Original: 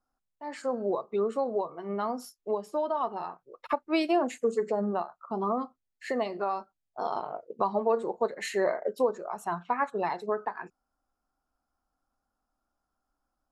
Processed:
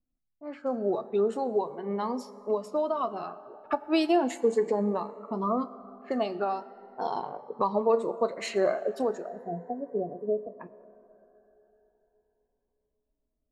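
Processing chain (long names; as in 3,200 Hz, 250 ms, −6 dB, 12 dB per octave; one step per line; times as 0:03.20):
time-frequency box erased 0:09.27–0:10.60, 740–10,000 Hz
low-pass that shuts in the quiet parts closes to 320 Hz, open at −28 dBFS
on a send at −14 dB: convolution reverb RT60 3.9 s, pre-delay 6 ms
on the sum: phaser whose notches keep moving one way rising 0.37 Hz
level +3 dB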